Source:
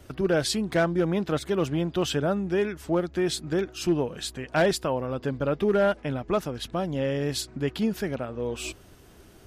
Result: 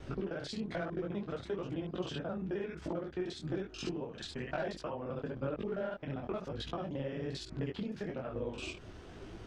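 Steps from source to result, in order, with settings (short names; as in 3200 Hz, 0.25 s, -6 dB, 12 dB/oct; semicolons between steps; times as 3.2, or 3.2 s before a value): local time reversal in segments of 44 ms; compressor 12:1, threshold -38 dBFS, peak gain reduction 19.5 dB; air absorption 130 m; detuned doubles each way 37 cents; gain +7.5 dB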